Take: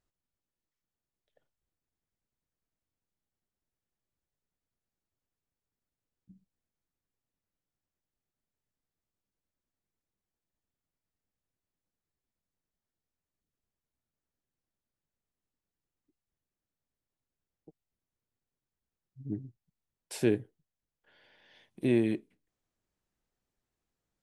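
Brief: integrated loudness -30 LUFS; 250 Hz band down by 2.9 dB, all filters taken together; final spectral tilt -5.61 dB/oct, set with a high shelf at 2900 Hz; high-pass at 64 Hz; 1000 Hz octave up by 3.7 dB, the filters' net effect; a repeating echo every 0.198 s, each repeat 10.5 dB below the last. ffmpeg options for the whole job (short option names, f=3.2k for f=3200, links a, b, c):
-af "highpass=64,equalizer=f=250:t=o:g=-4.5,equalizer=f=1k:t=o:g=5,highshelf=f=2.9k:g=4,aecho=1:1:198|396|594:0.299|0.0896|0.0269,volume=4dB"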